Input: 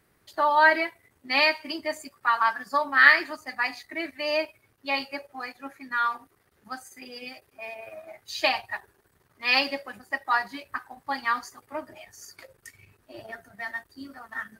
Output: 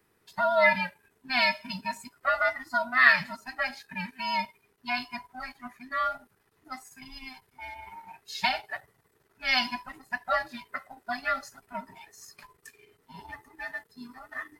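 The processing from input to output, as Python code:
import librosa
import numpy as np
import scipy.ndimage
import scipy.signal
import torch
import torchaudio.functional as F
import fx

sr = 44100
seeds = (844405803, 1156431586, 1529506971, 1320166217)

y = fx.band_invert(x, sr, width_hz=500)
y = F.gain(torch.from_numpy(y), -3.0).numpy()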